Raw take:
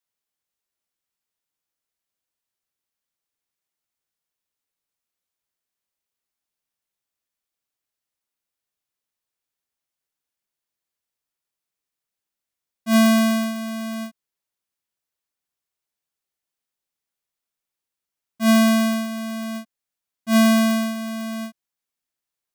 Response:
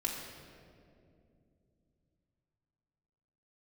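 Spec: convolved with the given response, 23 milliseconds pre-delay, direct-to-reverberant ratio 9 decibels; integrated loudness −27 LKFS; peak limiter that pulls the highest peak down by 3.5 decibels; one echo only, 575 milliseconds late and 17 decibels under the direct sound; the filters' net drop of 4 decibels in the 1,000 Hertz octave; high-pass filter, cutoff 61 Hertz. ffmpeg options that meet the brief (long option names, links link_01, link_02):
-filter_complex "[0:a]highpass=61,equalizer=frequency=1000:width_type=o:gain=-5.5,alimiter=limit=-13dB:level=0:latency=1,aecho=1:1:575:0.141,asplit=2[link_01][link_02];[1:a]atrim=start_sample=2205,adelay=23[link_03];[link_02][link_03]afir=irnorm=-1:irlink=0,volume=-12.5dB[link_04];[link_01][link_04]amix=inputs=2:normalize=0,volume=-4.5dB"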